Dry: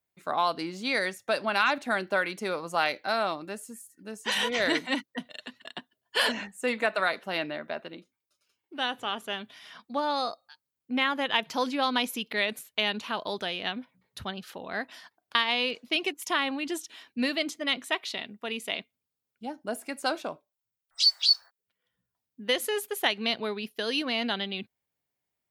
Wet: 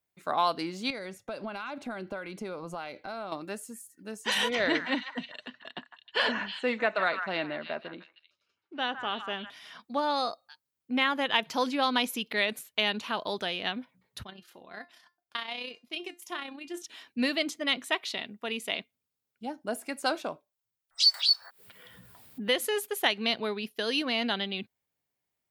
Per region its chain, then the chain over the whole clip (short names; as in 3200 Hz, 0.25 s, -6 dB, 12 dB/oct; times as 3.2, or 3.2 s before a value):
0.9–3.32 notch 1800 Hz, Q 8.8 + compressor 3:1, threshold -38 dBFS + tilt -2 dB/oct
4.55–9.5 air absorption 140 m + delay with a stepping band-pass 0.156 s, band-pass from 1300 Hz, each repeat 1.4 oct, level -5.5 dB
14.23–16.82 high shelf 9500 Hz +3.5 dB + AM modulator 31 Hz, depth 35% + resonator 350 Hz, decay 0.22 s, mix 70%
21.14–22.59 HPF 66 Hz + bell 6200 Hz -8.5 dB 0.48 oct + upward compressor, threshold -28 dBFS
whole clip: dry